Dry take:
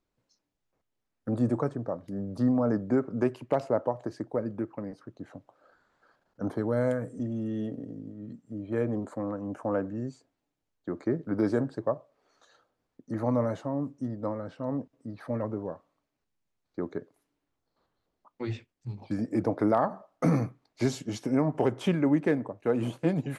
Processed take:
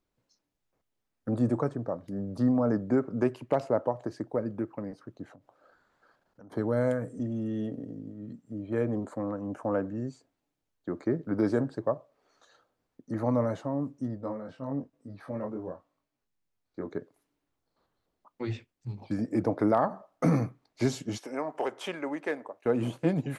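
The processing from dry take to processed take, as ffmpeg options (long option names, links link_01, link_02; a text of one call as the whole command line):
ffmpeg -i in.wav -filter_complex "[0:a]asettb=1/sr,asplit=3[link_01][link_02][link_03];[link_01]atrim=end=5.324[link_04];[link_02]atrim=start=5.32:end=6.52,asetpts=PTS-STARTPTS,afade=type=in:duration=0.004:curve=qsin,afade=type=out:start_time=1.196:duration=0.004:curve=qsin,acompressor=threshold=-50dB:ratio=6:attack=3.2:release=140:knee=1:detection=peak[link_05];[link_03]atrim=start=6.516[link_06];[link_04][link_05]acrossfade=duration=0.004:curve1=hsin:curve2=qsin[link_07];[link_07][link_06]acrossfade=duration=0.004:curve1=qsin:curve2=hsin,asplit=3[link_08][link_09][link_10];[link_08]afade=type=out:start_time=14.16:duration=0.02[link_11];[link_09]flanger=delay=20:depth=3.3:speed=1,afade=type=in:start_time=14.16:duration=0.02,afade=type=out:start_time=16.89:duration=0.02[link_12];[link_10]afade=type=in:start_time=16.89:duration=0.02[link_13];[link_11][link_12][link_13]amix=inputs=3:normalize=0,asettb=1/sr,asplit=3[link_14][link_15][link_16];[link_14]atrim=end=21.184[link_17];[link_15]atrim=start=21.18:end=22.66,asetpts=PTS-STARTPTS,afade=type=in:duration=0.004:curve=qsin,afade=type=out:start_time=1.476:duration=0.004:curve=qsin,highpass=560[link_18];[link_16]atrim=start=22.656[link_19];[link_17][link_18]acrossfade=duration=0.004:curve1=hsin:curve2=qsin[link_20];[link_20][link_19]acrossfade=duration=0.004:curve1=qsin:curve2=hsin" out.wav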